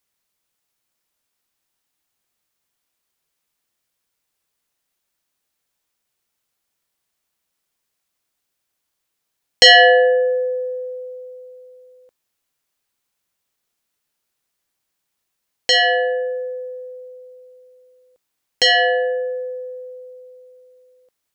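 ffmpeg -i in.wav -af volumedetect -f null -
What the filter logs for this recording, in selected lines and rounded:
mean_volume: -23.7 dB
max_volume: -2.8 dB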